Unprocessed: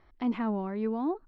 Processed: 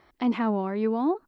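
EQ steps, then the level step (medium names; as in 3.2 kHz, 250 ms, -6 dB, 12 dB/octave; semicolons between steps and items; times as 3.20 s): high-pass 240 Hz 6 dB/octave; tilt shelf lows +3.5 dB, about 1.4 kHz; treble shelf 2.8 kHz +11.5 dB; +4.0 dB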